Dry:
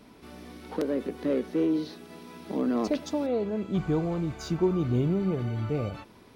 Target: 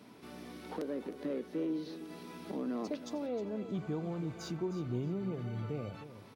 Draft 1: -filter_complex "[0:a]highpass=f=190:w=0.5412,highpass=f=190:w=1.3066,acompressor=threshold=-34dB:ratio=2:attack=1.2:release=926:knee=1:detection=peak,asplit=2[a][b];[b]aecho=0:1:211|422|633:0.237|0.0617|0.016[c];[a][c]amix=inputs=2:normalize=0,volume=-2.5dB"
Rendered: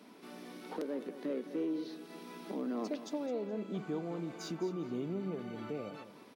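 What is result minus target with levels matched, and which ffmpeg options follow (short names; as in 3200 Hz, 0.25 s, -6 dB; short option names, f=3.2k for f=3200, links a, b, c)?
echo 0.1 s early; 125 Hz band -6.0 dB
-filter_complex "[0:a]highpass=f=90:w=0.5412,highpass=f=90:w=1.3066,acompressor=threshold=-34dB:ratio=2:attack=1.2:release=926:knee=1:detection=peak,asplit=2[a][b];[b]aecho=0:1:311|622|933:0.237|0.0617|0.016[c];[a][c]amix=inputs=2:normalize=0,volume=-2.5dB"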